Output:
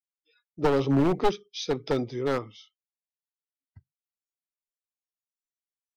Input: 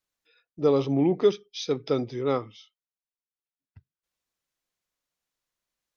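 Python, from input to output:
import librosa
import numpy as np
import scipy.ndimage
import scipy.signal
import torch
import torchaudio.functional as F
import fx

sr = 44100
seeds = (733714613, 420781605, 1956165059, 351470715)

y = np.minimum(x, 2.0 * 10.0 ** (-21.0 / 20.0) - x)
y = fx.noise_reduce_blind(y, sr, reduce_db=25)
y = fx.band_squash(y, sr, depth_pct=100, at=(0.64, 1.19))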